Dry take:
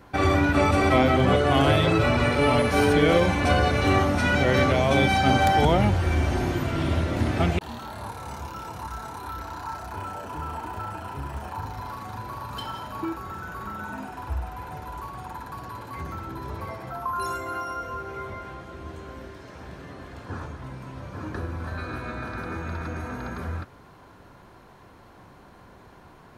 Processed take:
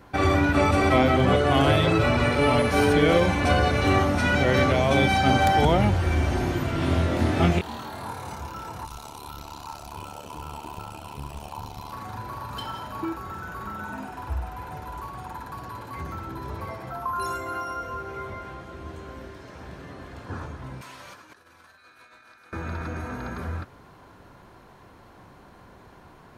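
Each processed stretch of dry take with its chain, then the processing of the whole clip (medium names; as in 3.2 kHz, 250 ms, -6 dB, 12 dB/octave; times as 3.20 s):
6.80–8.34 s: high-pass 73 Hz + doubling 23 ms -2.5 dB
8.85–11.93 s: FFT filter 1.1 kHz 0 dB, 1.7 kHz -11 dB, 2.6 kHz +7 dB + AM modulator 73 Hz, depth 70%
20.81–22.53 s: pre-emphasis filter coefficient 0.9 + compressor with a negative ratio -56 dBFS, ratio -0.5 + overdrive pedal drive 18 dB, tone 3.7 kHz, clips at -27.5 dBFS
whole clip: none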